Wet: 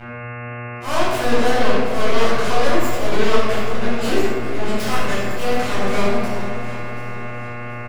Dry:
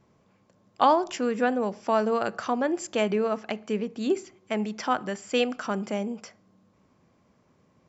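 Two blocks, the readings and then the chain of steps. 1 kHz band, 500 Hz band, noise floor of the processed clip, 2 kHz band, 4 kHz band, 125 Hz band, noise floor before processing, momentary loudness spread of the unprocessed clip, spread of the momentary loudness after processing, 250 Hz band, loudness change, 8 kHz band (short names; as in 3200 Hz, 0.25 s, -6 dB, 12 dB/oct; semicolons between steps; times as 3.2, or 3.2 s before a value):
+4.5 dB, +6.5 dB, -31 dBFS, +11.0 dB, +9.5 dB, +14.5 dB, -65 dBFS, 8 LU, 11 LU, +5.0 dB, +5.5 dB, n/a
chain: low shelf 200 Hz -8 dB; notch 6400 Hz, Q 6; comb 1.8 ms, depth 41%; sample leveller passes 3; limiter -14.5 dBFS, peak gain reduction 6.5 dB; added harmonics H 2 -14 dB, 3 -7 dB, 6 -28 dB, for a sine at -14.5 dBFS; buzz 120 Hz, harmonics 23, -40 dBFS -3 dB/oct; overloaded stage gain 23.5 dB; auto swell 0.132 s; echo with dull and thin repeats by turns 0.366 s, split 1100 Hz, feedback 63%, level -10 dB; shoebox room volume 1000 m³, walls mixed, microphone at 7.5 m; warbling echo 0.406 s, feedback 57%, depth 204 cents, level -17 dB; gain -4.5 dB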